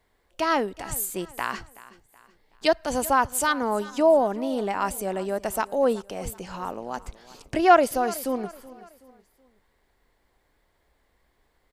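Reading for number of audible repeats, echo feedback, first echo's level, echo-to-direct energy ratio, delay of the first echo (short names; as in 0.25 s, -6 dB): 3, 40%, -19.0 dB, -18.5 dB, 0.375 s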